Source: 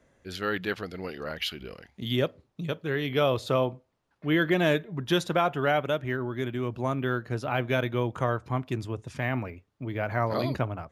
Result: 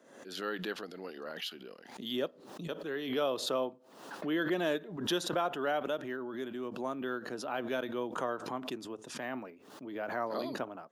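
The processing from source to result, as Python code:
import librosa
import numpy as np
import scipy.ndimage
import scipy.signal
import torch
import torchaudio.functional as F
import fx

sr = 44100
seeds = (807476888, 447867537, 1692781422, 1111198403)

y = scipy.signal.sosfilt(scipy.signal.butter(4, 220.0, 'highpass', fs=sr, output='sos'), x)
y = fx.peak_eq(y, sr, hz=2200.0, db=-8.5, octaves=0.37)
y = fx.pre_swell(y, sr, db_per_s=68.0)
y = F.gain(torch.from_numpy(y), -7.0).numpy()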